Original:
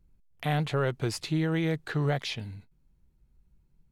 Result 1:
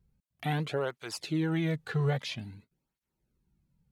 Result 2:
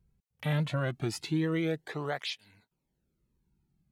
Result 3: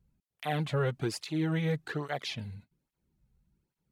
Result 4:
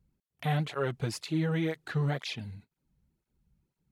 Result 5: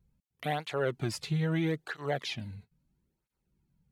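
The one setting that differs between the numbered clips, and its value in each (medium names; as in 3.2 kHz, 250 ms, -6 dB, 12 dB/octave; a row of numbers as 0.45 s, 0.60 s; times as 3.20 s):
cancelling through-zero flanger, nulls at: 0.5 Hz, 0.21 Hz, 1.2 Hz, 2 Hz, 0.76 Hz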